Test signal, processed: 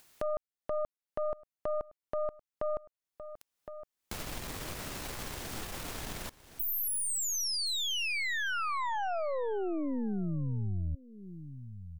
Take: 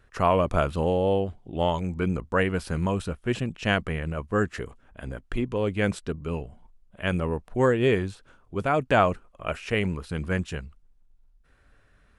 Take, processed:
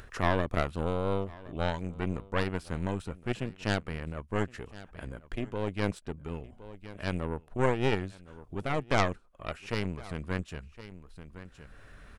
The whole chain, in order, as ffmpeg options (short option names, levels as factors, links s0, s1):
-af "aeval=exprs='0.501*(cos(1*acos(clip(val(0)/0.501,-1,1)))-cos(1*PI/2))+0.178*(cos(2*acos(clip(val(0)/0.501,-1,1)))-cos(2*PI/2))+0.0447*(cos(3*acos(clip(val(0)/0.501,-1,1)))-cos(3*PI/2))+0.251*(cos(4*acos(clip(val(0)/0.501,-1,1)))-cos(4*PI/2))+0.0224*(cos(6*acos(clip(val(0)/0.501,-1,1)))-cos(6*PI/2))':c=same,aecho=1:1:1064:0.0794,acompressor=mode=upward:threshold=0.0447:ratio=2.5,volume=0.473"